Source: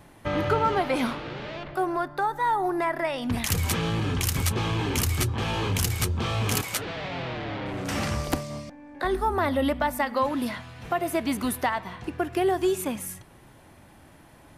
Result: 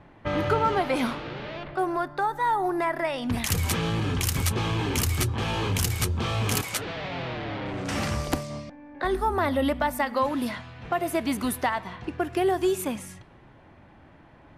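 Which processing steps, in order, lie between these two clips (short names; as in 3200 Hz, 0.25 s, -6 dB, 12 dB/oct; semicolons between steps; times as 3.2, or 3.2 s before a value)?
low-pass opened by the level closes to 2400 Hz, open at -24 dBFS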